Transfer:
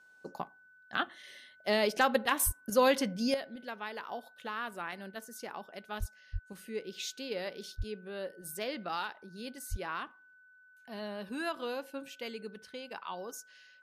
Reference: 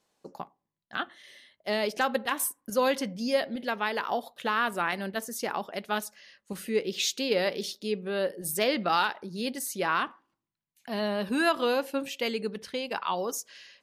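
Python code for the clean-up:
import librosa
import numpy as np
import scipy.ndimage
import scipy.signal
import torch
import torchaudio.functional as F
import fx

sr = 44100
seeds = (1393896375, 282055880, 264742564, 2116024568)

y = fx.notch(x, sr, hz=1500.0, q=30.0)
y = fx.fix_deplosive(y, sr, at_s=(2.45, 5.99, 6.32, 7.77, 9.7))
y = fx.fix_level(y, sr, at_s=3.34, step_db=11.0)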